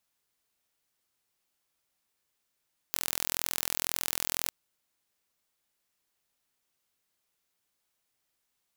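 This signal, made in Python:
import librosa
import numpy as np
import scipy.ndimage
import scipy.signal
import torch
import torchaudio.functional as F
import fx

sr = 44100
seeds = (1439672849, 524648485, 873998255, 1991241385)

y = 10.0 ** (-3.0 / 20.0) * (np.mod(np.arange(round(1.57 * sr)), round(sr / 42.0)) == 0)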